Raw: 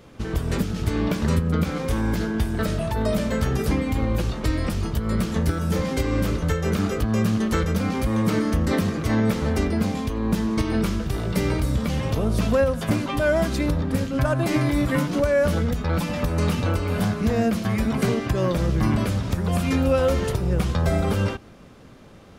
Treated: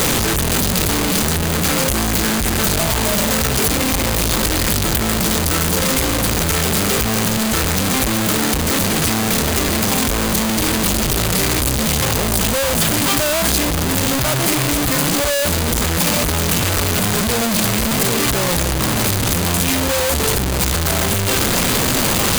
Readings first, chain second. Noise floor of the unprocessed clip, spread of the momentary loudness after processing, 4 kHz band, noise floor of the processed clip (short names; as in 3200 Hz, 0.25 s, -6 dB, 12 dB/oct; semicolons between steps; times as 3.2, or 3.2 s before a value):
-45 dBFS, 2 LU, +17.0 dB, -18 dBFS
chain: infinite clipping; high shelf 3600 Hz +10 dB; notch 5500 Hz, Q 19; gain +3.5 dB